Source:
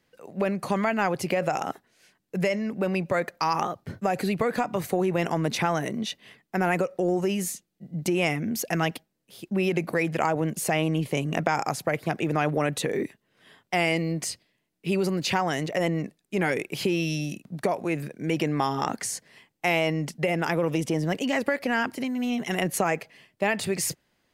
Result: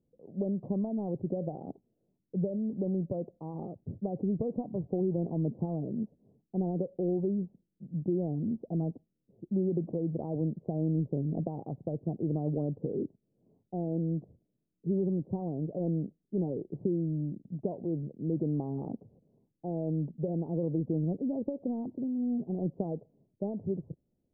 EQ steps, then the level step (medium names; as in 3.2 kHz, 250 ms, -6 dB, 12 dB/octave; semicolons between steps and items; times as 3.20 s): Gaussian low-pass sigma 18 samples; -1.5 dB